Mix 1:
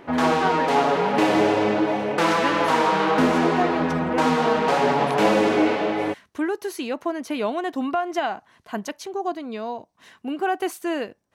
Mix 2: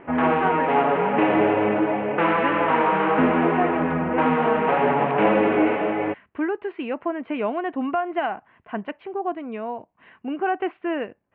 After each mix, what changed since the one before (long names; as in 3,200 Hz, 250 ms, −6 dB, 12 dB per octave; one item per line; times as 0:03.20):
master: add Butterworth low-pass 2,800 Hz 48 dB per octave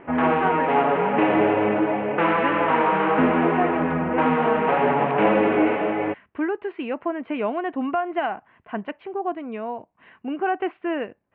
nothing changed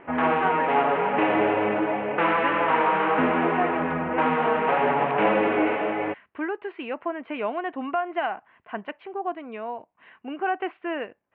background: add low-shelf EQ 170 Hz +6 dB
master: add low-shelf EQ 340 Hz −10.5 dB